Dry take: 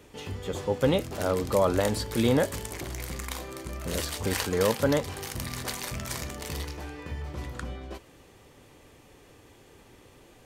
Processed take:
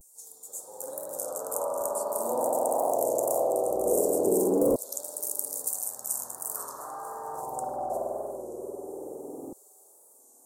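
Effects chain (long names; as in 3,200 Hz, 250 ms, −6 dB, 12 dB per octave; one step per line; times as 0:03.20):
0:01.75–0:03.26: high-pass filter 120 Hz
spring reverb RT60 2.6 s, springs 48 ms, chirp 30 ms, DRR −7 dB
auto-filter high-pass saw down 0.21 Hz 290–3,600 Hz
hard clipping −13 dBFS, distortion −17 dB
downward compressor 6 to 1, threshold −26 dBFS, peak gain reduction 10.5 dB
0:06.56–0:07.41: flat-topped bell 1,600 Hz +12 dB 1.2 octaves
on a send: feedback echo with a high-pass in the loop 931 ms, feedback 40%, high-pass 970 Hz, level −21.5 dB
on the sum: pitch vibrato 0.44 Hz 41 cents
elliptic band-stop filter 750–7,900 Hz, stop band 80 dB
high-shelf EQ 4,200 Hz +6.5 dB
wow of a warped record 33 1/3 rpm, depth 100 cents
level +6 dB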